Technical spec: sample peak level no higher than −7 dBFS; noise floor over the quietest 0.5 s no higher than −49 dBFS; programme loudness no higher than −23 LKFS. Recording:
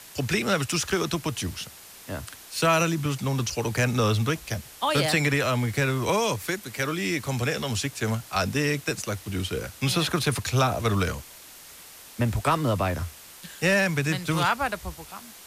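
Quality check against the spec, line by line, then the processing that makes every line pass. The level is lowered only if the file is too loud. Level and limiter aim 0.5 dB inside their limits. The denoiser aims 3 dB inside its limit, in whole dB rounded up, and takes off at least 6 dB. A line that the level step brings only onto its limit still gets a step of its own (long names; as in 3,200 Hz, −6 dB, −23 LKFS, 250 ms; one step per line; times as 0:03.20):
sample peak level −10.0 dBFS: in spec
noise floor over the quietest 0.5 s −47 dBFS: out of spec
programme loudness −25.5 LKFS: in spec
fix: broadband denoise 6 dB, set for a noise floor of −47 dBFS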